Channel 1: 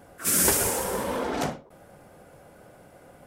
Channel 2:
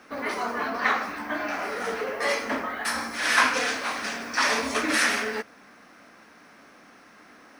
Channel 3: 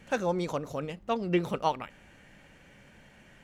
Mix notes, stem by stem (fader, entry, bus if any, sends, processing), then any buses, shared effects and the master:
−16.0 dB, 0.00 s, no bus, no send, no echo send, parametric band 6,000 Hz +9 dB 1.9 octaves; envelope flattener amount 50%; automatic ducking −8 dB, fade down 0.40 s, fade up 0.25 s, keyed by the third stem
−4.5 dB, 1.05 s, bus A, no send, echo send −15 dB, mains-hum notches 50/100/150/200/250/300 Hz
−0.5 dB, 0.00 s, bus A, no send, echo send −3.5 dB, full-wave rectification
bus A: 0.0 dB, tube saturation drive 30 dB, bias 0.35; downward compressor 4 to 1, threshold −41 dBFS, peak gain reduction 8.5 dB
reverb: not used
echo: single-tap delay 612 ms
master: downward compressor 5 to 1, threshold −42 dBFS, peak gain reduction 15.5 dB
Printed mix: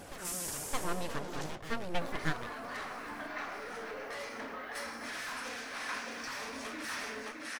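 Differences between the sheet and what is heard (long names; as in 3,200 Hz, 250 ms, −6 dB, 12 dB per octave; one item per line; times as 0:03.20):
stem 2: entry 1.05 s → 1.90 s
master: missing downward compressor 5 to 1, threshold −42 dBFS, peak gain reduction 15.5 dB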